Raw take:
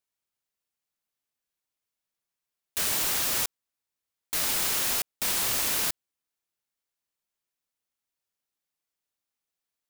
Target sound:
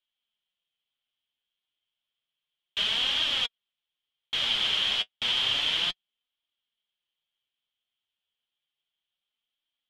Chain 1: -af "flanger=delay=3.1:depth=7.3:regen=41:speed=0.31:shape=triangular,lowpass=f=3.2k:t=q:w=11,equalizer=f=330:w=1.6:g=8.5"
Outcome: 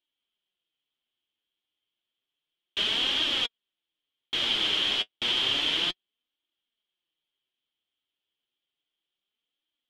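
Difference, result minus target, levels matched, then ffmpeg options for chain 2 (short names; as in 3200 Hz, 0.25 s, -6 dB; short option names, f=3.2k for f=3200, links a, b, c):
250 Hz band +7.5 dB
-af "flanger=delay=3.1:depth=7.3:regen=41:speed=0.31:shape=triangular,lowpass=f=3.2k:t=q:w=11,equalizer=f=330:w=1.6:g=-3"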